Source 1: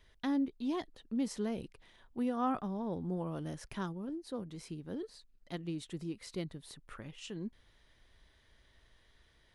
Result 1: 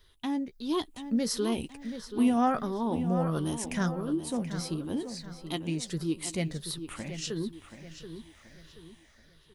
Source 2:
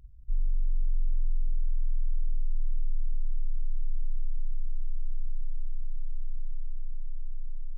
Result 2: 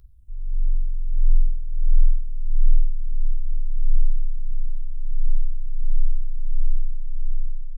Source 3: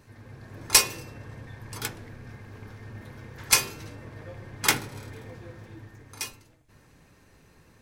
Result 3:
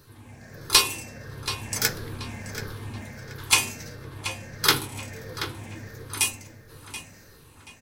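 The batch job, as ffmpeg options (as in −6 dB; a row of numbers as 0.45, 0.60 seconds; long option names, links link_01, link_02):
-filter_complex "[0:a]afftfilt=real='re*pow(10,9/40*sin(2*PI*(0.6*log(max(b,1)*sr/1024/100)/log(2)-(-1.5)*(pts-256)/sr)))':imag='im*pow(10,9/40*sin(2*PI*(0.6*log(max(b,1)*sr/1024/100)/log(2)-(-1.5)*(pts-256)/sr)))':win_size=1024:overlap=0.75,acrossover=split=5800[link_01][link_02];[link_02]acompressor=threshold=-32dB:ratio=4:attack=1:release=60[link_03];[link_01][link_03]amix=inputs=2:normalize=0,highshelf=frequency=4600:gain=10.5,dynaudnorm=framelen=160:gausssize=9:maxgain=7.5dB,asplit=2[link_04][link_05];[link_05]adelay=13,volume=-12dB[link_06];[link_04][link_06]amix=inputs=2:normalize=0,asplit=2[link_07][link_08];[link_08]adelay=730,lowpass=frequency=4300:poles=1,volume=-10dB,asplit=2[link_09][link_10];[link_10]adelay=730,lowpass=frequency=4300:poles=1,volume=0.4,asplit=2[link_11][link_12];[link_12]adelay=730,lowpass=frequency=4300:poles=1,volume=0.4,asplit=2[link_13][link_14];[link_14]adelay=730,lowpass=frequency=4300:poles=1,volume=0.4[link_15];[link_07][link_09][link_11][link_13][link_15]amix=inputs=5:normalize=0,volume=-1dB"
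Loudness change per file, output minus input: +7.5, +8.5, −1.0 LU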